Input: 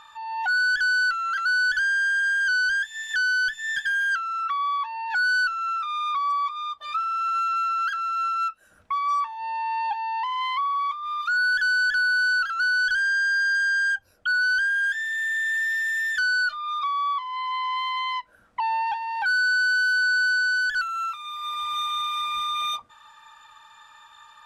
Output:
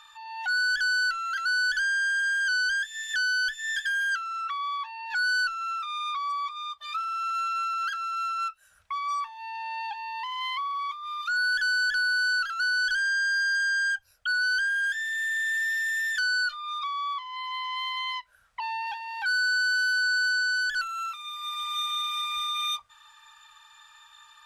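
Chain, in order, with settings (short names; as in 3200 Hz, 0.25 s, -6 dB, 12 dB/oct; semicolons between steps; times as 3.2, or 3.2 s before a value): passive tone stack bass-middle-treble 10-0-10; gain +2.5 dB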